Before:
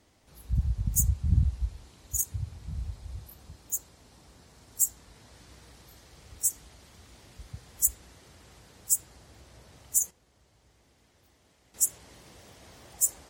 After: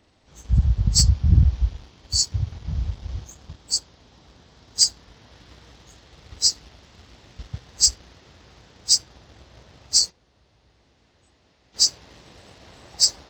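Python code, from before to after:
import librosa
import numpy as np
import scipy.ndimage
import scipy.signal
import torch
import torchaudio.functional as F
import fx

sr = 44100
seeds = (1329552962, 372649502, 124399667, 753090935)

y = fx.freq_compress(x, sr, knee_hz=2000.0, ratio=1.5)
y = fx.leveller(y, sr, passes=1)
y = F.gain(torch.from_numpy(y), 5.5).numpy()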